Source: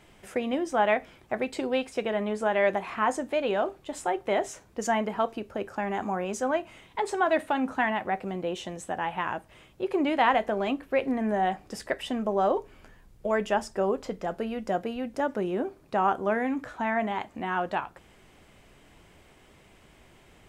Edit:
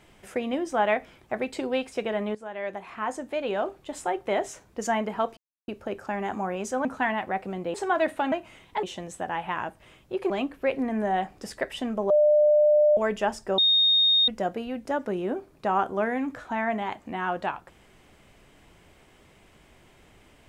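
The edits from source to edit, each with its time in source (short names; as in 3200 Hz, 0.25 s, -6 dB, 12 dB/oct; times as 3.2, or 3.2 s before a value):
2.35–3.79 fade in, from -15 dB
5.37 insert silence 0.31 s
6.54–7.05 swap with 7.63–8.52
9.99–10.59 cut
12.39–13.26 bleep 599 Hz -15.5 dBFS
13.87–14.57 bleep 3700 Hz -17 dBFS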